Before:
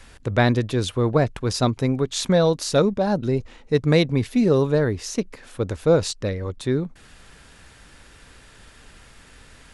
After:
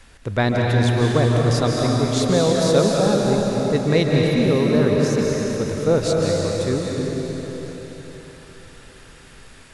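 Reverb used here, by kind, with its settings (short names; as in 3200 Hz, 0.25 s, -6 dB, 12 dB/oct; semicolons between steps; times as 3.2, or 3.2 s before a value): digital reverb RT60 4.3 s, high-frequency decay 1×, pre-delay 0.115 s, DRR -2.5 dB; gain -1.5 dB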